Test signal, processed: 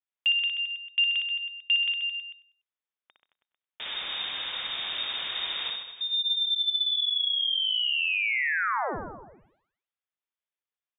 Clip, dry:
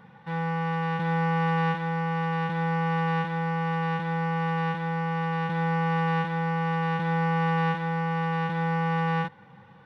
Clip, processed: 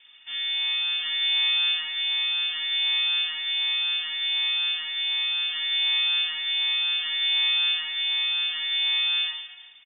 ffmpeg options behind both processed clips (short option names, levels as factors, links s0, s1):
-filter_complex "[0:a]asplit=2[s0][s1];[s1]aecho=0:1:60|132|218.4|322.1|446.5:0.631|0.398|0.251|0.158|0.1[s2];[s0][s2]amix=inputs=2:normalize=0,lowpass=f=3100:t=q:w=0.5098,lowpass=f=3100:t=q:w=0.6013,lowpass=f=3100:t=q:w=0.9,lowpass=f=3100:t=q:w=2.563,afreqshift=-3700,asplit=2[s3][s4];[s4]aecho=0:1:97|194|291:0.126|0.0466|0.0172[s5];[s3][s5]amix=inputs=2:normalize=0,volume=0.668"